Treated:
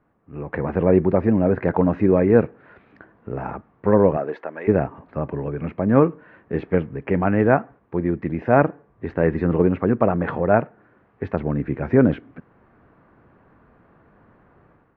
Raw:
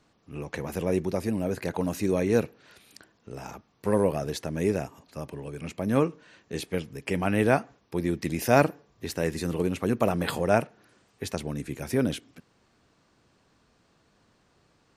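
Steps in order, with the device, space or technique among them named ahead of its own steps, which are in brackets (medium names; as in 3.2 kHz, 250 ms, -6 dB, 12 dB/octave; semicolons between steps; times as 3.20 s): 4.16–4.67 s: high-pass 250 Hz -> 980 Hz 12 dB/octave; action camera in a waterproof case (low-pass 1.8 kHz 24 dB/octave; level rider gain up to 11.5 dB; AAC 96 kbps 32 kHz)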